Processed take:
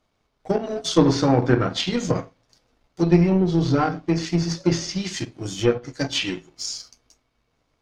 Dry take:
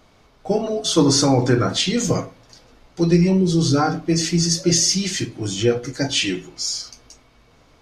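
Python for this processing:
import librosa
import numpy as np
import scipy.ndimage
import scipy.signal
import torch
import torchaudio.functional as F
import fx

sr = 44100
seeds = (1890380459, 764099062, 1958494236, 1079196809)

y = fx.power_curve(x, sr, exponent=1.4)
y = fx.env_lowpass_down(y, sr, base_hz=3000.0, full_db=-18.5)
y = y * 10.0 ** (2.0 / 20.0)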